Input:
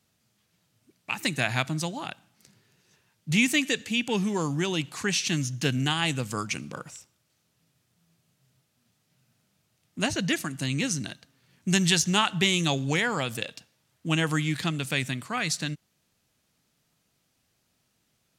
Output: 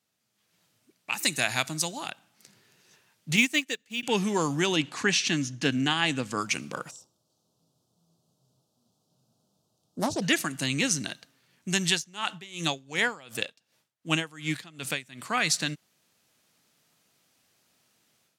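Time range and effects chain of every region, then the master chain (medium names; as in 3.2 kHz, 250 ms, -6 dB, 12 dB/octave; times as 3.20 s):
1.12–2.11 s: tone controls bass 0 dB, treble +9 dB + band-stop 3.2 kHz, Q 26
3.36–4.03 s: companded quantiser 6-bit + upward expansion 2.5:1, over -37 dBFS
4.76–6.41 s: distance through air 51 m + small resonant body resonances 270/1700 Hz, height 6 dB + tape noise reduction on one side only decoder only
6.91–10.22 s: Butterworth band-stop 2 kHz, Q 0.64 + treble shelf 5.9 kHz -11 dB + loudspeaker Doppler distortion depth 0.38 ms
11.92–15.27 s: de-esser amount 25% + logarithmic tremolo 2.7 Hz, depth 23 dB
whole clip: high-pass 300 Hz 6 dB/octave; level rider gain up to 11.5 dB; trim -6.5 dB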